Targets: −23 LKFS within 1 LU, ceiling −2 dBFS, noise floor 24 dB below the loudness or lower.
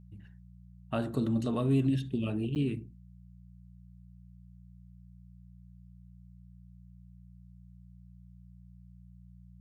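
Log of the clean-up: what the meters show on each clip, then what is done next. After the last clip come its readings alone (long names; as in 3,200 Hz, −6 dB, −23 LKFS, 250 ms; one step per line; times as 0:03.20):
number of dropouts 1; longest dropout 9.2 ms; mains hum 60 Hz; hum harmonics up to 180 Hz; level of the hum −52 dBFS; integrated loudness −31.0 LKFS; sample peak −17.5 dBFS; target loudness −23.0 LKFS
→ repair the gap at 0:02.55, 9.2 ms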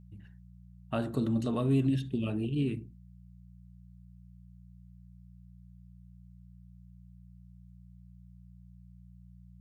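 number of dropouts 0; mains hum 60 Hz; hum harmonics up to 180 Hz; level of the hum −52 dBFS
→ hum removal 60 Hz, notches 3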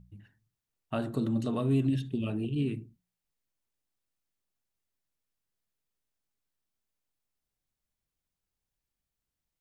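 mains hum none found; integrated loudness −31.0 LKFS; sample peak −17.5 dBFS; target loudness −23.0 LKFS
→ level +8 dB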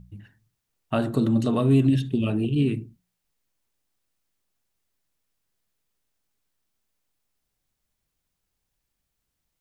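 integrated loudness −23.5 LKFS; sample peak −9.5 dBFS; background noise floor −80 dBFS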